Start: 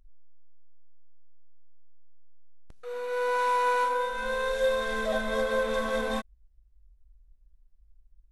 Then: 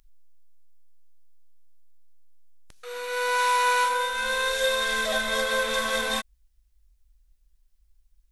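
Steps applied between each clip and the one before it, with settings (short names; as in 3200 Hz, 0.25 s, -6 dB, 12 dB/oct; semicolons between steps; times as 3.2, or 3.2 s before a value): tilt shelf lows -9 dB, about 1300 Hz; gain +5 dB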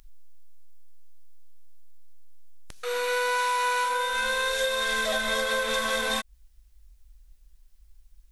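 compressor 6:1, threshold -32 dBFS, peak gain reduction 12 dB; gain +8 dB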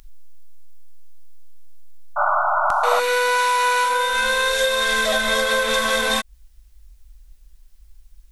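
painted sound noise, 2.16–3, 580–1500 Hz -26 dBFS; gain +7 dB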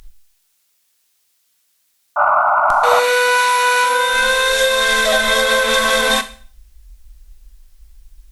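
added harmonics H 2 -20 dB, 4 -36 dB, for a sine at -5 dBFS; Schroeder reverb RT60 0.44 s, combs from 27 ms, DRR 11.5 dB; gain +5 dB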